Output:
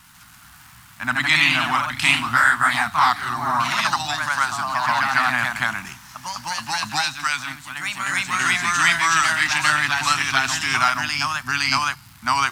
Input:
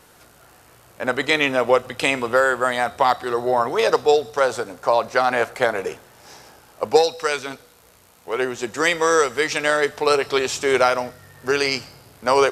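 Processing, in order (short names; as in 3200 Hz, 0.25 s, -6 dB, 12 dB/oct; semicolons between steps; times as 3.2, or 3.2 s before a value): echoes that change speed 0.139 s, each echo +1 st, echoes 3; crackle 490/s -40 dBFS; Chebyshev band-stop 200–1100 Hz, order 2; gain +2.5 dB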